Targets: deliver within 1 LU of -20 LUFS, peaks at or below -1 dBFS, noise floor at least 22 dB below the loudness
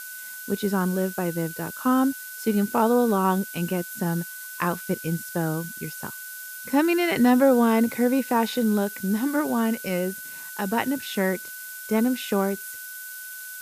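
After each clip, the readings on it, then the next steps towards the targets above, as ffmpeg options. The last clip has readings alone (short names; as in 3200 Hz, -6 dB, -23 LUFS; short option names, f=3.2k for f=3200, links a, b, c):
steady tone 1500 Hz; tone level -39 dBFS; noise floor -38 dBFS; noise floor target -47 dBFS; loudness -24.5 LUFS; peak -7.5 dBFS; loudness target -20.0 LUFS
-> -af "bandreject=f=1.5k:w=30"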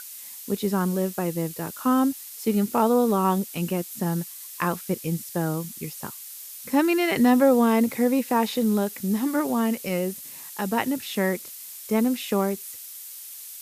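steady tone none; noise floor -41 dBFS; noise floor target -47 dBFS
-> -af "afftdn=nr=6:nf=-41"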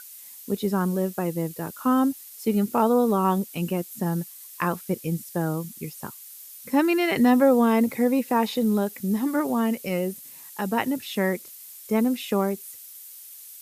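noise floor -44 dBFS; noise floor target -47 dBFS
-> -af "afftdn=nr=6:nf=-44"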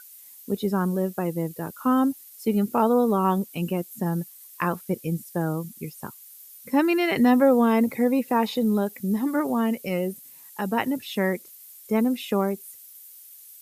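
noise floor -48 dBFS; loudness -24.5 LUFS; peak -8.0 dBFS; loudness target -20.0 LUFS
-> -af "volume=4.5dB"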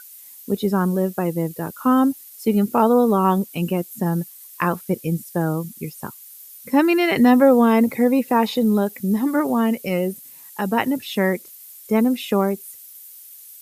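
loudness -20.0 LUFS; peak -3.5 dBFS; noise floor -43 dBFS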